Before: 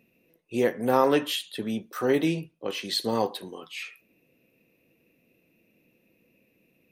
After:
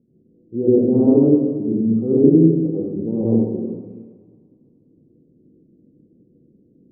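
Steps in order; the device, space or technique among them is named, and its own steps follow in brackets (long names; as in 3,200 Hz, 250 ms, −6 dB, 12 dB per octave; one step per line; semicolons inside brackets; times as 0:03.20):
next room (low-pass filter 390 Hz 24 dB per octave; convolution reverb RT60 1.2 s, pre-delay 82 ms, DRR −7.5 dB)
0:01.43–0:01.90: Butterworth low-pass 1,700 Hz
feedback echo with a high-pass in the loop 106 ms, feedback 84%, high-pass 440 Hz, level −18.5 dB
level +4.5 dB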